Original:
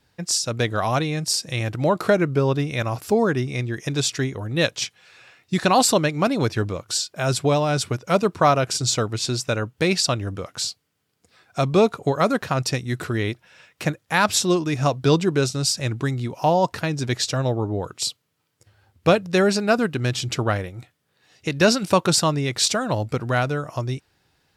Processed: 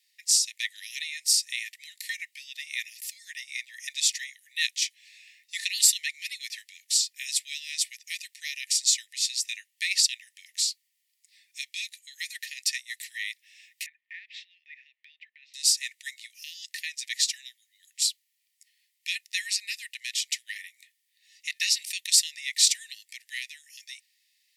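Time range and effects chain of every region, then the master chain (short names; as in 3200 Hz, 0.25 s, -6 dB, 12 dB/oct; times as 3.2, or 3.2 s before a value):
13.86–15.54 LPF 2400 Hz 24 dB/oct + compressor 5:1, threshold -29 dBFS
whole clip: Chebyshev high-pass 1800 Hz, order 10; bell 2700 Hz -6 dB 2.4 oct; gain +4.5 dB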